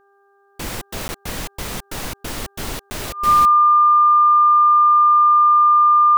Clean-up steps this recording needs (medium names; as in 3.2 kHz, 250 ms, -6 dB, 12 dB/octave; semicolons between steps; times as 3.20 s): de-hum 398.4 Hz, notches 4; band-stop 1.2 kHz, Q 30; interpolate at 1.08/2.90 s, 10 ms